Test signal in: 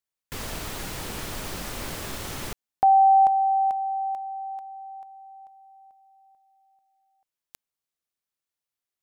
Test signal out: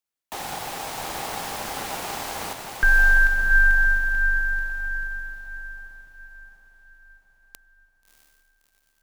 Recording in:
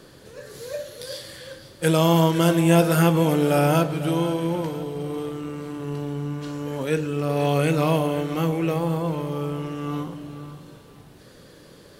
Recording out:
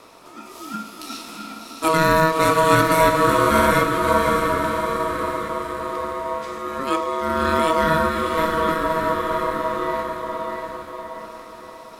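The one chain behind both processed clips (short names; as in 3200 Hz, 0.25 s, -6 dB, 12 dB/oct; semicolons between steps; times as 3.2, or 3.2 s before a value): diffused feedback echo 0.655 s, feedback 47%, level -4.5 dB; ring modulator 800 Hz; gain +4 dB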